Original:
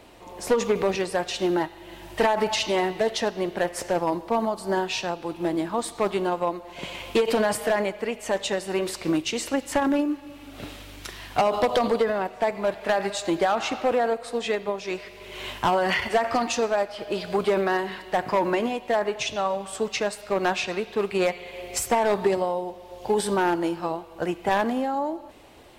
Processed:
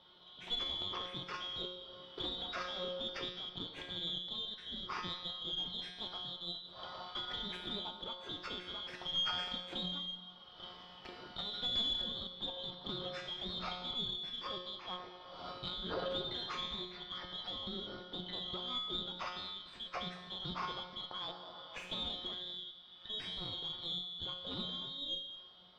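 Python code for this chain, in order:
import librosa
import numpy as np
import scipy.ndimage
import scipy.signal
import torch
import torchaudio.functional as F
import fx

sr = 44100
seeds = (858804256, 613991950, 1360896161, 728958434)

p1 = fx.band_shuffle(x, sr, order='2413')
p2 = fx.high_shelf(p1, sr, hz=9100.0, db=-7.0)
p3 = fx.over_compress(p2, sr, threshold_db=-29.0, ratio=-1.0)
p4 = p2 + F.gain(torch.from_numpy(p3), -0.5).numpy()
p5 = fx.comb_fb(p4, sr, f0_hz=180.0, decay_s=0.9, harmonics='all', damping=0.0, mix_pct=90)
p6 = fx.tube_stage(p5, sr, drive_db=22.0, bias=0.8)
p7 = fx.air_absorb(p6, sr, metres=300.0)
p8 = p7 + fx.echo_single(p7, sr, ms=212, db=-17.0, dry=0)
y = F.gain(torch.from_numpy(p8), 6.5).numpy()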